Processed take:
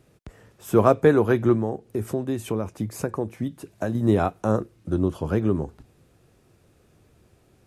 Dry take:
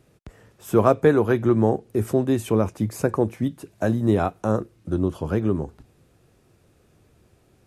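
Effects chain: 1.55–3.95 compressor 2.5:1, threshold -25 dBFS, peak gain reduction 8 dB

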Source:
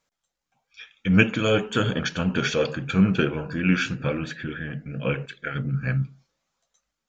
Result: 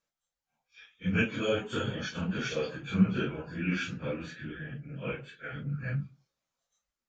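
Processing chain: phase scrambler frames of 0.1 s; gain -9 dB

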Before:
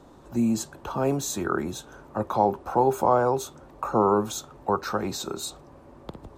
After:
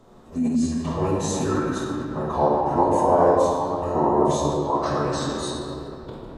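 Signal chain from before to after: shoebox room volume 180 m³, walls hard, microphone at 0.86 m; formant-preserving pitch shift -6 st; gain -2.5 dB

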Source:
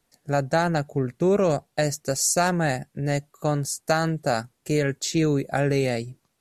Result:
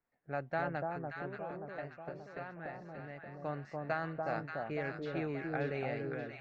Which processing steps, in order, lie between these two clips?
ladder low-pass 3000 Hz, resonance 25%; 0.94–3.3 compressor 6:1, threshold -34 dBFS, peak gain reduction 11.5 dB; low-pass opened by the level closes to 1900 Hz, open at -24.5 dBFS; low shelf 440 Hz -6.5 dB; echo with dull and thin repeats by turns 0.29 s, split 1100 Hz, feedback 71%, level -2 dB; gain -6.5 dB

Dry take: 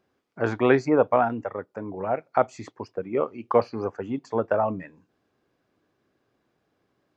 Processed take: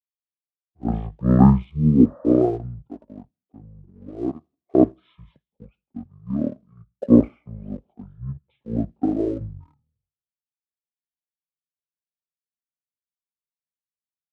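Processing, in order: high shelf 2500 Hz -11 dB; in parallel at -4 dB: crossover distortion -42 dBFS; on the sum: speed mistake 15 ips tape played at 7.5 ips; on a send: thin delay 81 ms, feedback 63%, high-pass 2600 Hz, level -23 dB; on the sum: spectral repair 1.75–2.3, 500–1900 Hz both; three-band expander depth 100%; gain -4 dB

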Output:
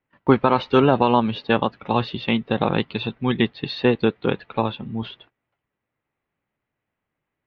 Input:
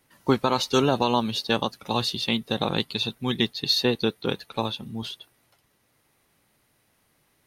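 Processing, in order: LPF 2700 Hz 24 dB/oct; gate -56 dBFS, range -18 dB; gain +5.5 dB

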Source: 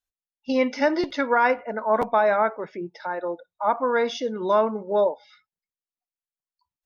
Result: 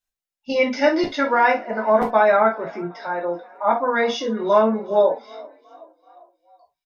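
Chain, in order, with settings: frequency-shifting echo 0.383 s, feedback 56%, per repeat +33 Hz, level -23.5 dB; non-linear reverb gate 90 ms falling, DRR -2.5 dB

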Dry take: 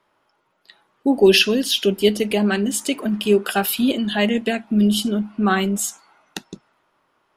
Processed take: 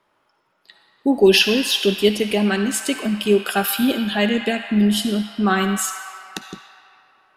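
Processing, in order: on a send: HPF 900 Hz 24 dB/oct + reverb RT60 3.4 s, pre-delay 46 ms, DRR 4.5 dB

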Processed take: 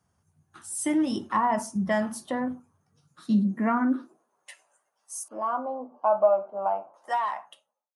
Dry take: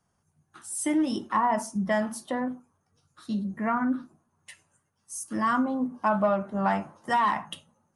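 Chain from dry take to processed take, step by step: ending faded out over 1.78 s; 5.28–6.94 running mean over 24 samples; high-pass sweep 67 Hz -> 630 Hz, 2.28–4.58

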